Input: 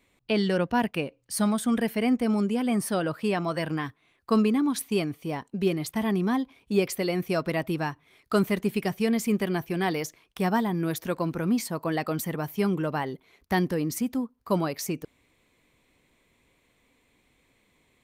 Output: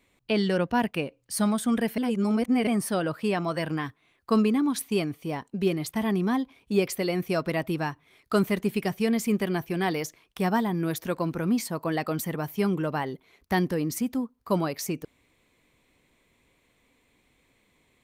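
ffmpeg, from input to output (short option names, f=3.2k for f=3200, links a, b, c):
-filter_complex "[0:a]asplit=3[a][b][c];[a]atrim=end=1.982[d];[b]atrim=start=1.978:end=2.672,asetpts=PTS-STARTPTS,areverse[e];[c]atrim=start=2.668[f];[d][e]acrossfade=d=0.004:c1=hsin:c2=hsin[g];[g][f]acrossfade=d=0.004:c1=hsin:c2=hsin"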